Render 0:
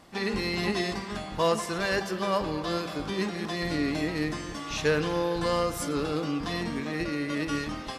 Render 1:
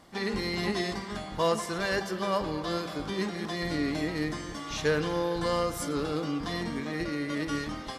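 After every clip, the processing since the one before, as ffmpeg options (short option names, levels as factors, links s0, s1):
-af "bandreject=f=2600:w=12,volume=0.841"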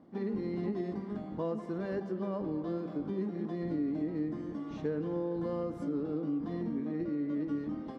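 -af "bandpass=f=260:t=q:w=1.5:csg=0,acompressor=threshold=0.0158:ratio=2.5,volume=1.58"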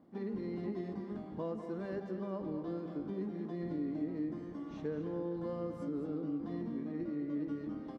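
-af "aecho=1:1:214:0.335,volume=0.596"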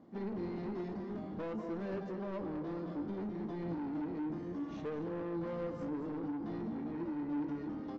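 -af "aresample=16000,asoftclip=type=tanh:threshold=0.0106,aresample=44100,flanger=delay=9:depth=4.8:regen=74:speed=0.61:shape=sinusoidal,volume=2.66"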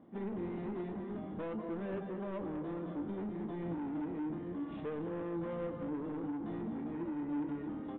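-af "aresample=8000,aresample=44100"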